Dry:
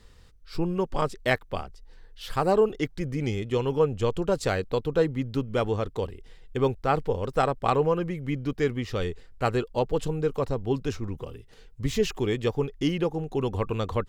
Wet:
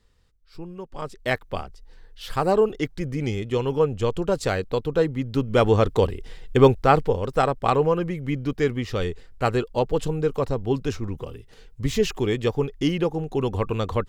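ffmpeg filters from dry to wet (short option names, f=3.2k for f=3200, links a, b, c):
-af "volume=10dB,afade=t=in:st=0.93:d=0.54:silence=0.251189,afade=t=in:st=5.26:d=0.58:silence=0.398107,afade=t=out:st=6.62:d=0.59:silence=0.446684"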